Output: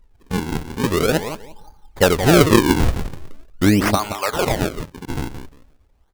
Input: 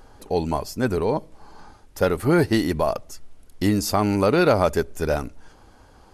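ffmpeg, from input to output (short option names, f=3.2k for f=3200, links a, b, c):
-filter_complex "[0:a]asettb=1/sr,asplit=3[a][b][c];[a]atrim=end=3.954[d];[b]atrim=start=3.95:end=5.17,asetpts=PTS-STARTPTS,afade=t=in:d=0.004:c=qsin,afade=t=out:st=1.216:d=0.004:c=qsin,highpass=1.1k[e];[c]atrim=start=5.166[f];[d][e]acrossfade=d=0.004:c1=hsin:c2=qsin[g];[g][f]acrossfade=d=0.004:c1=qsin:c2=hsin,afftdn=nr=17:nf=-36,highshelf=f=11k:g=6.5,dynaudnorm=f=230:g=9:m=13.5dB,asplit=2[h][i];[i]adelay=174,lowpass=f=2.8k:p=1,volume=-9.5dB,asplit=2[j][k];[k]adelay=174,lowpass=f=2.8k:p=1,volume=0.2,asplit=2[l][m];[m]adelay=174,lowpass=f=2.8k:p=1,volume=0.2[n];[h][j][l][n]amix=inputs=4:normalize=0,acrusher=samples=41:mix=1:aa=0.000001:lfo=1:lforange=65.6:lforate=0.43,volume=-1dB"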